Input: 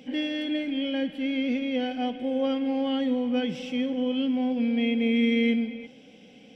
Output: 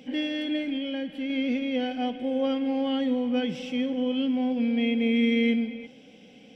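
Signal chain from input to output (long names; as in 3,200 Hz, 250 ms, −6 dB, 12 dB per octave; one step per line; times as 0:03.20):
0:00.76–0:01.30: downward compressor, threshold −28 dBFS, peak gain reduction 5 dB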